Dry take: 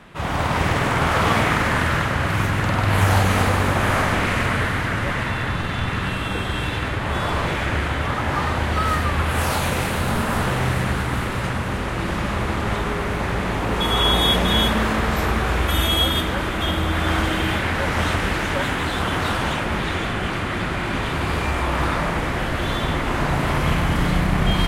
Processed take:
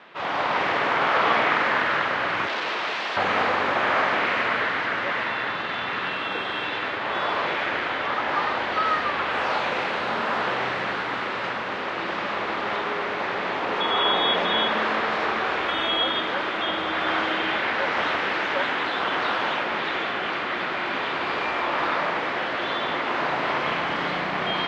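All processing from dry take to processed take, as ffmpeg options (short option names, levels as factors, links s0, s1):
-filter_complex "[0:a]asettb=1/sr,asplit=3[s0][s1][s2];[s0]atrim=end=2.474[s3];[s1]atrim=start=2.47:end=3.17,asetpts=PTS-STARTPTS,afade=t=in:d=0.004:c=qsin,afade=t=out:st=0.696:d=0.004:c=qsin,bandreject=f=76.15:t=h:w=4,bandreject=f=152.3:t=h:w=4,bandreject=f=228.45:t=h:w=4,bandreject=f=304.6:t=h:w=4,aeval=exprs='(mod(8.91*val(0)+1,2)-1)/8.91':c=same[s4];[s2]atrim=start=3.166[s5];[s3][s4]acrossfade=d=0.004:c1=hsin:c2=qsin[s6];[s6][s5]acrossfade=d=0.004:c1=qsin:c2=hsin,highpass=420,acrossover=split=3200[s7][s8];[s8]acompressor=threshold=0.02:ratio=4:attack=1:release=60[s9];[s7][s9]amix=inputs=2:normalize=0,lowpass=f=4700:w=0.5412,lowpass=f=4700:w=1.3066"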